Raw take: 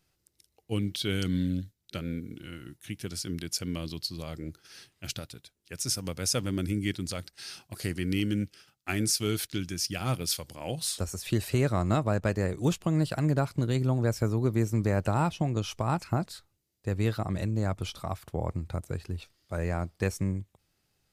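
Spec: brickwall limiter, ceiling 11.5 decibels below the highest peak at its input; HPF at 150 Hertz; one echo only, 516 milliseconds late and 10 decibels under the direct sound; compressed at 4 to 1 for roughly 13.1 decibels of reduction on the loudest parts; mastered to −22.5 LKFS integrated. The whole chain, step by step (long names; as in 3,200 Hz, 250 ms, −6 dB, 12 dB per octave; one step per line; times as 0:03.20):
high-pass filter 150 Hz
downward compressor 4 to 1, threshold −39 dBFS
brickwall limiter −33.5 dBFS
single-tap delay 516 ms −10 dB
level +22.5 dB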